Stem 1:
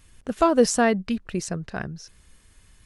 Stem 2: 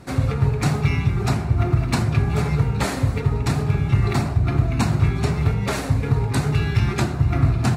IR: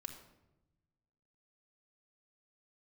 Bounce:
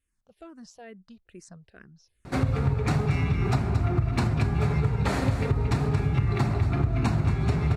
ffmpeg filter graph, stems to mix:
-filter_complex "[0:a]asplit=2[s0][s1];[s1]afreqshift=-2.3[s2];[s0][s2]amix=inputs=2:normalize=1,volume=0.15,afade=t=in:st=0.8:d=0.59:silence=0.446684[s3];[1:a]aemphasis=mode=reproduction:type=cd,adelay=2250,volume=1.26,asplit=2[s4][s5];[s5]volume=0.422,aecho=0:1:228:1[s6];[s3][s4][s6]amix=inputs=3:normalize=0,acompressor=threshold=0.0891:ratio=5"

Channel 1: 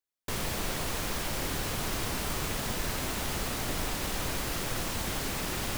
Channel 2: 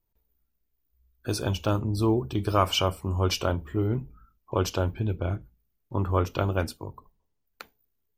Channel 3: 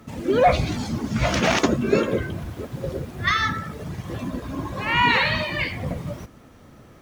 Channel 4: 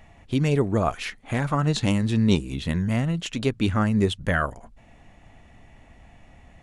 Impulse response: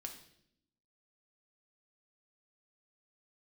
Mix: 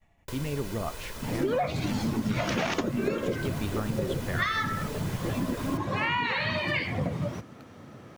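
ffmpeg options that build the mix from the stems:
-filter_complex "[0:a]aecho=1:1:2:0.65,acrossover=split=1200|7600[s0][s1][s2];[s0]acompressor=threshold=0.02:ratio=4[s3];[s1]acompressor=threshold=0.00708:ratio=4[s4];[s2]acompressor=threshold=0.00631:ratio=4[s5];[s3][s4][s5]amix=inputs=3:normalize=0,volume=0.631[s6];[1:a]volume=0.141[s7];[2:a]highpass=f=91:w=0.5412,highpass=f=91:w=1.3066,highshelf=f=8600:g=-10.5,adelay=1150,volume=1.19[s8];[3:a]agate=range=0.0224:threshold=0.00501:ratio=3:detection=peak,volume=0.237,asplit=2[s9][s10];[s10]volume=0.501[s11];[4:a]atrim=start_sample=2205[s12];[s11][s12]afir=irnorm=-1:irlink=0[s13];[s6][s7][s8][s9][s13]amix=inputs=5:normalize=0,acompressor=threshold=0.0631:ratio=16"

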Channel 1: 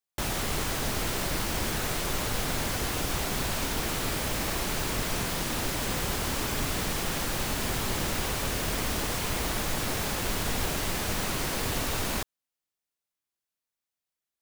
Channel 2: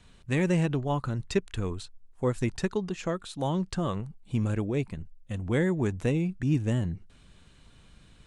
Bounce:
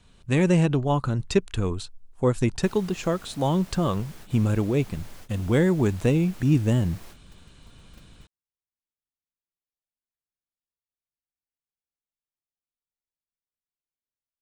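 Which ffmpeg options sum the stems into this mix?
-filter_complex "[0:a]adelay=2450,volume=0.126[s0];[1:a]equalizer=f=1900:w=2.9:g=-4,dynaudnorm=f=150:g=3:m=2.11,volume=0.891,asplit=2[s1][s2];[s2]apad=whole_len=743846[s3];[s0][s3]sidechaingate=range=0.00112:threshold=0.00631:ratio=16:detection=peak[s4];[s4][s1]amix=inputs=2:normalize=0"

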